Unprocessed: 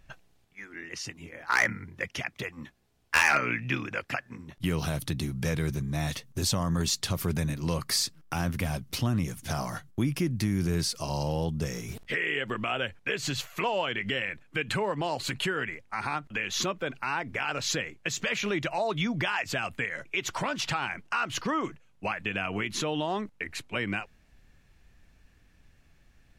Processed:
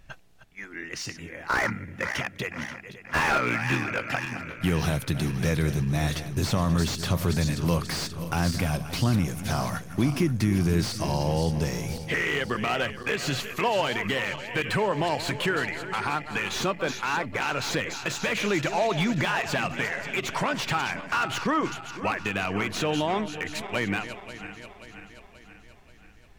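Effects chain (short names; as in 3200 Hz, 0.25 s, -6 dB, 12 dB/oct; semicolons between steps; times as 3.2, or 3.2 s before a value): regenerating reverse delay 0.266 s, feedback 72%, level -12.5 dB; slew limiter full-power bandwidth 90 Hz; gain +4 dB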